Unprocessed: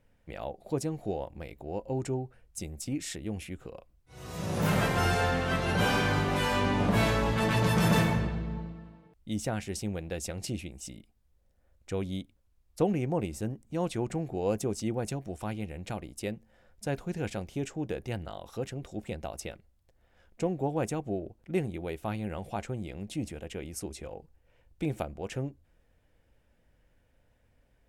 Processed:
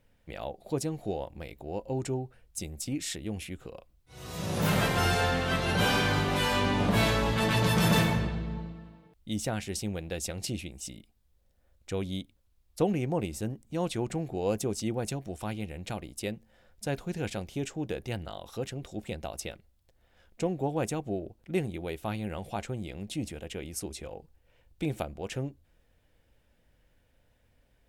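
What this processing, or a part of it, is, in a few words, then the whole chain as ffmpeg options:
presence and air boost: -af "equalizer=frequency=3700:width_type=o:width=0.99:gain=4.5,highshelf=frequency=9900:gain=6"

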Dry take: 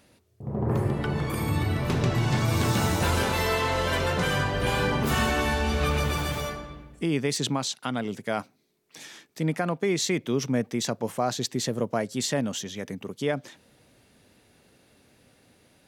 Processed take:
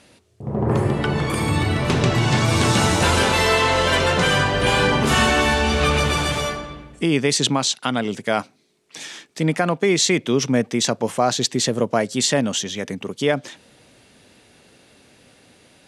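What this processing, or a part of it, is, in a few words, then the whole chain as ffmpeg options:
presence and air boost: -af "lowpass=frequency=9900:width=0.5412,lowpass=frequency=9900:width=1.3066,lowshelf=frequency=150:gain=-5,equalizer=frequency=3000:width_type=o:width=0.77:gain=2.5,highshelf=frequency=9600:gain=5,volume=8dB"

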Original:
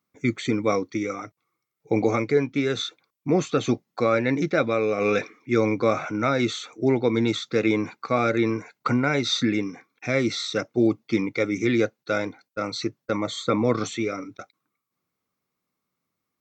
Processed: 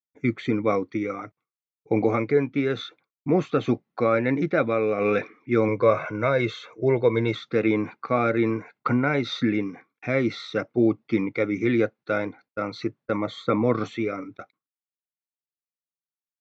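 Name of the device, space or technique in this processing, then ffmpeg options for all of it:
hearing-loss simulation: -filter_complex "[0:a]lowpass=2600,agate=range=-33dB:threshold=-51dB:ratio=3:detection=peak,asettb=1/sr,asplit=3[link_01][link_02][link_03];[link_01]atrim=end=5.684[link_04];[link_02]atrim=start=5.68:end=7.35,asetpts=PTS-STARTPTS,afade=type=in:duration=0.004:curve=qsin,afade=type=out:start_time=1.666:duration=0.004:curve=qsin,aecho=1:1:1.9:0.59,atrim=end_sample=73647[link_05];[link_03]atrim=start=7.346[link_06];[link_04][link_05]acrossfade=duration=0.004:curve1=hsin:curve2=qsin[link_07];[link_07][link_06]acrossfade=duration=0.004:curve1=qsin:curve2=hsin"

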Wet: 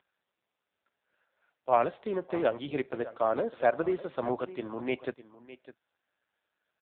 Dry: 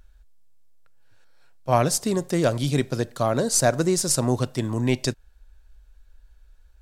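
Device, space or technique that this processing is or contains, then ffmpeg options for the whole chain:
satellite phone: -filter_complex "[0:a]asplit=3[link_01][link_02][link_03];[link_01]afade=type=out:start_time=2:duration=0.02[link_04];[link_02]lowpass=5300,afade=type=in:start_time=2:duration=0.02,afade=type=out:start_time=3.4:duration=0.02[link_05];[link_03]afade=type=in:start_time=3.4:duration=0.02[link_06];[link_04][link_05][link_06]amix=inputs=3:normalize=0,highpass=390,lowpass=3100,aecho=1:1:605:0.158,volume=-2.5dB" -ar 8000 -c:a libopencore_amrnb -b:a 5900

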